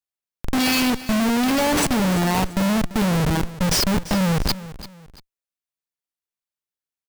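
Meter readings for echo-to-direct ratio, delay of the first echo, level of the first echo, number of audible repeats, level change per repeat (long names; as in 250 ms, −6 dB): −15.5 dB, 340 ms, −16.0 dB, 2, −9.5 dB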